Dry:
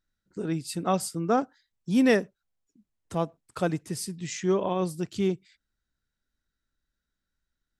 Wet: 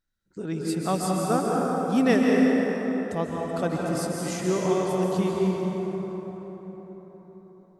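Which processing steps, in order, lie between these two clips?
dense smooth reverb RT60 4.9 s, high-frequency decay 0.45×, pre-delay 120 ms, DRR −3 dB
level −1.5 dB

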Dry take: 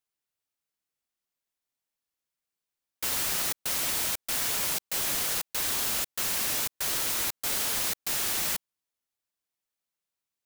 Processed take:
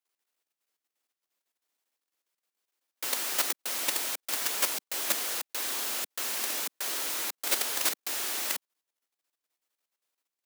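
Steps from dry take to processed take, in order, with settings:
high-pass filter 260 Hz 24 dB per octave
high-shelf EQ 5,100 Hz −2 dB
output level in coarse steps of 10 dB
level +7.5 dB

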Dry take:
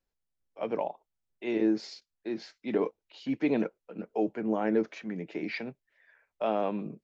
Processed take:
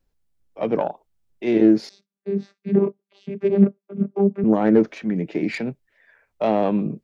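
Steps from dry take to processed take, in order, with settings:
phase distortion by the signal itself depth 0.1 ms
low-shelf EQ 340 Hz +10.5 dB
0:01.89–0:04.44: channel vocoder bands 16, saw 198 Hz
level +6 dB

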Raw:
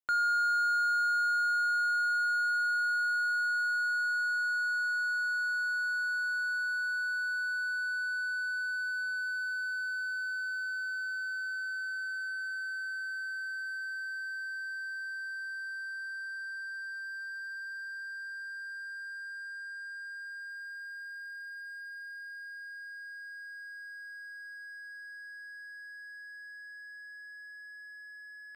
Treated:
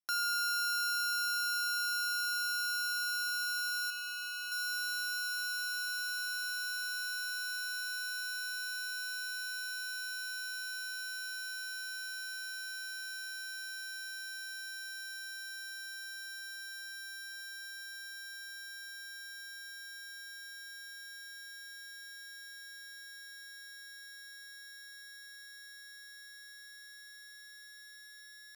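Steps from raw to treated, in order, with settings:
samples sorted by size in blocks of 8 samples
0:03.90–0:04.52: hard clipping −34 dBFS, distortion −19 dB
level −5 dB

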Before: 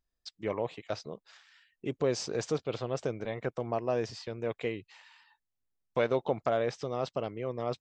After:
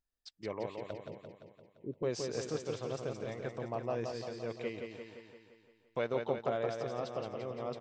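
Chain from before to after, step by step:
0:00.91–0:02.03: Butterworth low-pass 560 Hz 48 dB per octave
repeating echo 172 ms, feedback 59%, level −5 dB
level −6.5 dB

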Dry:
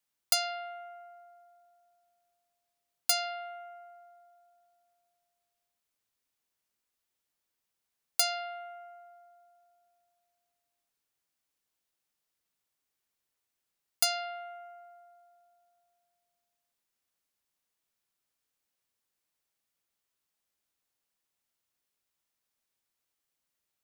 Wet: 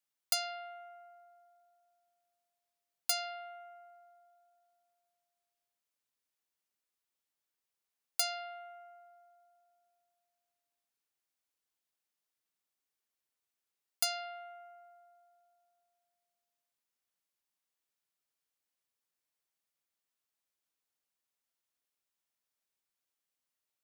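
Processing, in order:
low-shelf EQ 170 Hz −6.5 dB
level −5 dB

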